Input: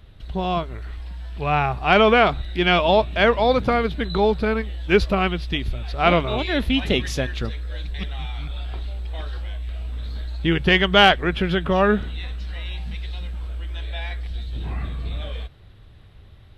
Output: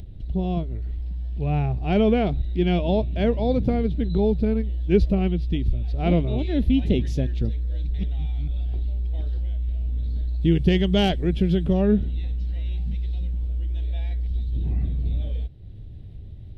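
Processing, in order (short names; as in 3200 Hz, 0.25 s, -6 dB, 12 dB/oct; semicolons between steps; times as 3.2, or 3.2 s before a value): tone controls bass +4 dB, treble -13 dB, from 10.41 s treble -3 dB, from 11.72 s treble -12 dB; upward compressor, threshold -31 dBFS; EQ curve 310 Hz 0 dB, 730 Hz -10 dB, 1200 Hz -24 dB, 2000 Hz -15 dB, 5700 Hz -2 dB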